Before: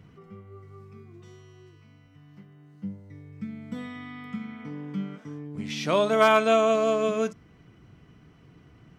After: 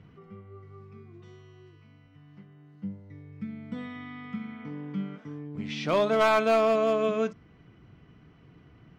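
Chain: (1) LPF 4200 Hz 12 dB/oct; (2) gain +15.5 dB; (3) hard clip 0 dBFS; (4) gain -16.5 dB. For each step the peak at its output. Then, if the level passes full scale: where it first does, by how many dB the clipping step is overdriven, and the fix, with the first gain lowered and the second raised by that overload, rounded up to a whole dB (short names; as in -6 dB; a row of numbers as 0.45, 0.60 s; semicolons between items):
-6.5, +9.0, 0.0, -16.5 dBFS; step 2, 9.0 dB; step 2 +6.5 dB, step 4 -7.5 dB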